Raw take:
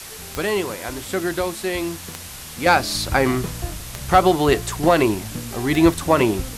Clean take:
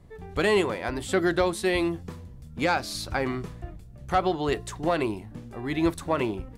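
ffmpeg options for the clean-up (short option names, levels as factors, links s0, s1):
-af "adeclick=t=4,afwtdn=0.018,asetnsamples=n=441:p=0,asendcmd='2.66 volume volume -9.5dB',volume=1"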